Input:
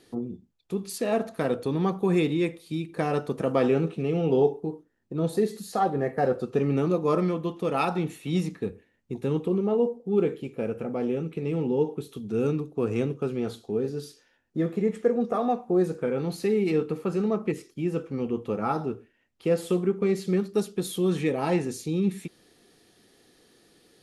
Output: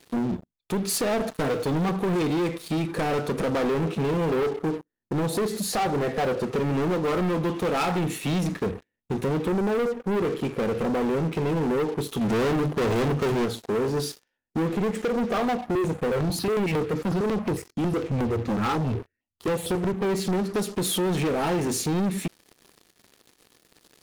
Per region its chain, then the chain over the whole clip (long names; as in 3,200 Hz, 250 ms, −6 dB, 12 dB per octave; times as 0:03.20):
0:01.29–0:01.89: mu-law and A-law mismatch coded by A + comb filter 6.6 ms, depth 85%
0:12.21–0:13.46: leveller curve on the samples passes 3 + mains-hum notches 50/100/150/200/250 Hz
0:15.57–0:20.01: parametric band 87 Hz +12 dB 0.78 octaves + step-sequenced phaser 11 Hz 430–6,900 Hz
whole clip: downward compressor 3 to 1, threshold −29 dBFS; leveller curve on the samples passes 5; level −4.5 dB